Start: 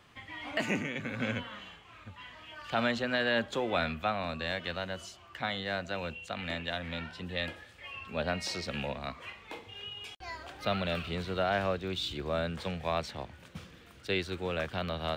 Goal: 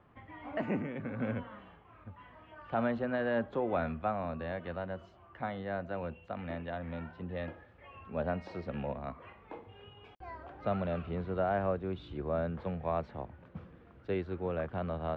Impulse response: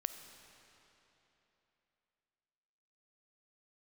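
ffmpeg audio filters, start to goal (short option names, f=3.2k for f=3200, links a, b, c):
-af "lowpass=1.1k"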